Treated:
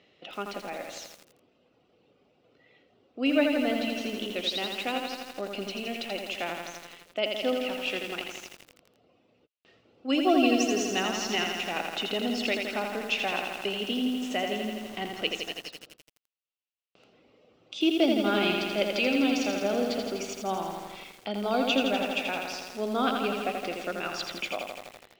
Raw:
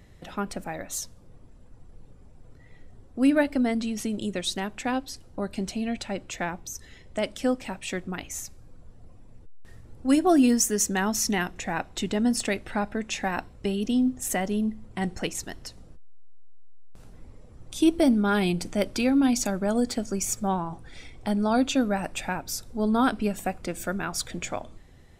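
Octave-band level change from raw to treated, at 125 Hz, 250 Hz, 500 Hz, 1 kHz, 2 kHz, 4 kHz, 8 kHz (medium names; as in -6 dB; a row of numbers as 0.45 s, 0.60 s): -10.0 dB, -5.0 dB, 0.0 dB, -1.0 dB, +1.5 dB, +5.0 dB, -10.0 dB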